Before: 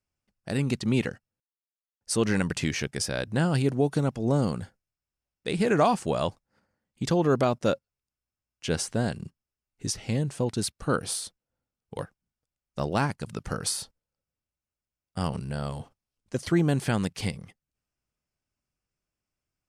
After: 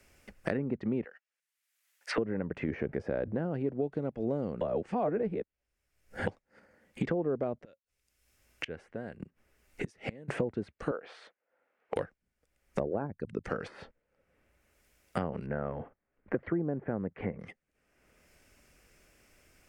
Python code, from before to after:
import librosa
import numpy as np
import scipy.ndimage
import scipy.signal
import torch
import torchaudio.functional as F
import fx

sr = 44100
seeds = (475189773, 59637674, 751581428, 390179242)

y = fx.highpass(x, sr, hz=1200.0, slope=12, at=(1.04, 2.18))
y = fx.env_flatten(y, sr, amount_pct=70, at=(2.68, 3.41))
y = fx.gate_flip(y, sr, shuts_db=-29.0, range_db=-34, at=(7.63, 10.28), fade=0.02)
y = fx.bandpass_edges(y, sr, low_hz=600.0, high_hz=2300.0, at=(10.91, 11.96))
y = fx.envelope_sharpen(y, sr, power=2.0, at=(12.79, 13.44))
y = fx.lowpass(y, sr, hz=1800.0, slope=24, at=(15.46, 17.39))
y = fx.edit(y, sr, fx.reverse_span(start_s=4.61, length_s=1.66), tone=tone)
y = fx.env_lowpass_down(y, sr, base_hz=840.0, full_db=-23.0)
y = fx.graphic_eq(y, sr, hz=(125, 500, 1000, 2000, 4000), db=(-7, 5, -5, 7, -4))
y = fx.band_squash(y, sr, depth_pct=100)
y = y * librosa.db_to_amplitude(-6.0)